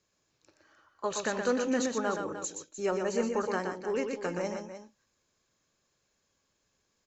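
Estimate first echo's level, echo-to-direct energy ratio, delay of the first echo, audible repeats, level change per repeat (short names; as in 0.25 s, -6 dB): -5.5 dB, -4.5 dB, 0.121 s, 2, no steady repeat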